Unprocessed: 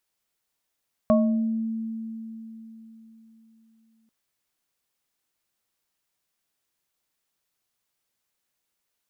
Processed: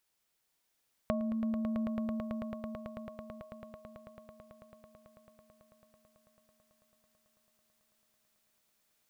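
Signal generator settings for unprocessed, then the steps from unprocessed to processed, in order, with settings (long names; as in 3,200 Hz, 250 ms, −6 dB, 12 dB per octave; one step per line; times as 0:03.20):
inharmonic partials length 2.99 s, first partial 224 Hz, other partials 625/1,100 Hz, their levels 1.5/−8.5 dB, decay 3.92 s, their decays 0.59/0.34 s, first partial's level −17 dB
downward compressor 6 to 1, threshold −32 dBFS
on a send: echo that builds up and dies away 110 ms, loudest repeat 8, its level −9.5 dB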